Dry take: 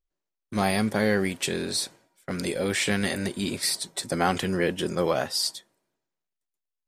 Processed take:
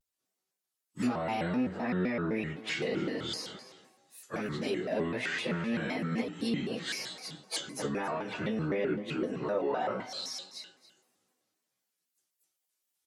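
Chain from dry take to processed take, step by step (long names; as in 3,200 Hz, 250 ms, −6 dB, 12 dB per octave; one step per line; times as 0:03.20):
camcorder AGC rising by 6.1 dB per second
high-pass filter 140 Hz 12 dB per octave
treble cut that deepens with the level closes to 1,800 Hz, closed at −25 dBFS
high-shelf EQ 4,400 Hz +11 dB
in parallel at +2 dB: downward compressor 6 to 1, threshold −28 dBFS, peak gain reduction 10 dB
on the sum: brickwall limiter −13 dBFS, peak gain reduction 7 dB
tuned comb filter 220 Hz, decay 0.19 s, harmonics all, mix 60%
time stretch by phase vocoder 1.9×
single-tap delay 281 ms −16.5 dB
pitch modulation by a square or saw wave square 3.9 Hz, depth 250 cents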